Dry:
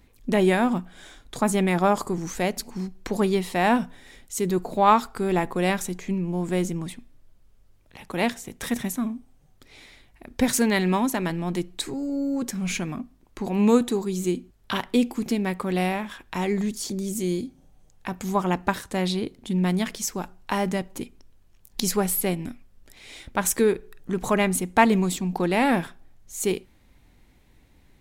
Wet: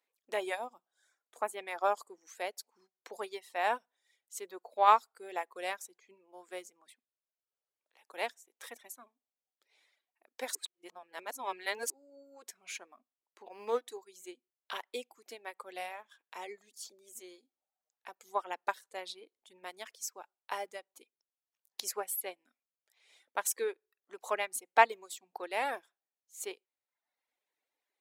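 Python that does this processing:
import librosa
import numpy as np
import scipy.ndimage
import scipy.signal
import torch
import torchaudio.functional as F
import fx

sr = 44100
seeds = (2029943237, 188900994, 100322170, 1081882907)

y = fx.peak_eq(x, sr, hz=fx.line((0.54, 1400.0), (1.58, 5900.0)), db=-12.5, octaves=0.77, at=(0.54, 1.58), fade=0.02)
y = fx.resample_linear(y, sr, factor=6, at=(13.43, 13.88))
y = fx.edit(y, sr, fx.reverse_span(start_s=10.55, length_s=1.35), tone=tone)
y = scipy.signal.sosfilt(scipy.signal.butter(4, 460.0, 'highpass', fs=sr, output='sos'), y)
y = fx.dereverb_blind(y, sr, rt60_s=0.95)
y = fx.upward_expand(y, sr, threshold_db=-46.0, expansion=1.5)
y = y * 10.0 ** (-4.0 / 20.0)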